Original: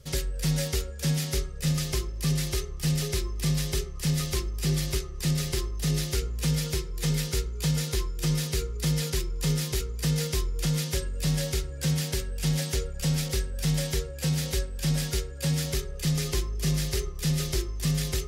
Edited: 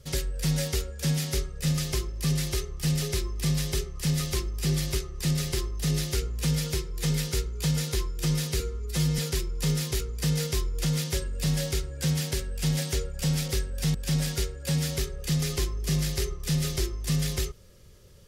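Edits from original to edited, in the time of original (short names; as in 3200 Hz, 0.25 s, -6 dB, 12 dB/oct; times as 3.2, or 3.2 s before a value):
8.6–8.99 stretch 1.5×
13.75–14.7 cut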